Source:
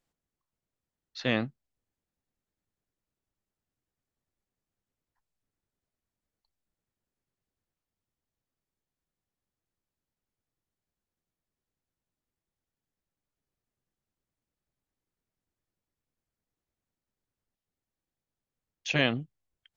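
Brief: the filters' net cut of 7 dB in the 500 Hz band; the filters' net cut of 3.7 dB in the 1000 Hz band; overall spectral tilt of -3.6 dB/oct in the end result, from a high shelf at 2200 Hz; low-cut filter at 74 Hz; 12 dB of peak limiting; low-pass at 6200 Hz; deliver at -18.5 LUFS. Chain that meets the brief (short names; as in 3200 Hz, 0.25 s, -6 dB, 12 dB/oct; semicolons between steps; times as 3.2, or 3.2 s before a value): HPF 74 Hz; LPF 6200 Hz; bell 500 Hz -8 dB; bell 1000 Hz -3.5 dB; high shelf 2200 Hz +7 dB; gain +17 dB; limiter -4 dBFS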